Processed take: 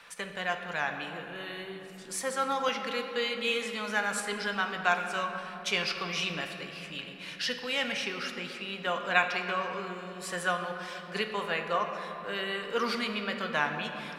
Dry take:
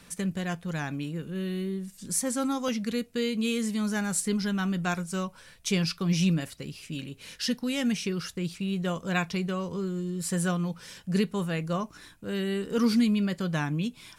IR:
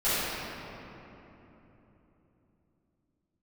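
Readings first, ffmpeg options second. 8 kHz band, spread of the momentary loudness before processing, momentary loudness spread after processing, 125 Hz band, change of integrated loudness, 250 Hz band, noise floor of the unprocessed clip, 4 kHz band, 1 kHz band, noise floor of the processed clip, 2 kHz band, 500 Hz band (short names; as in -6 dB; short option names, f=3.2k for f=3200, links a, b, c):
-7.0 dB, 9 LU, 10 LU, -15.0 dB, -2.5 dB, -13.5 dB, -54 dBFS, +2.5 dB, +6.0 dB, -45 dBFS, +6.0 dB, -1.0 dB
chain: -filter_complex "[0:a]acrossover=split=560 3800:gain=0.0708 1 0.178[a][b][c];[a][b][c]amix=inputs=3:normalize=0,asplit=2[d][e];[1:a]atrim=start_sample=2205[f];[e][f]afir=irnorm=-1:irlink=0,volume=-18.5dB[g];[d][g]amix=inputs=2:normalize=0,volume=5dB"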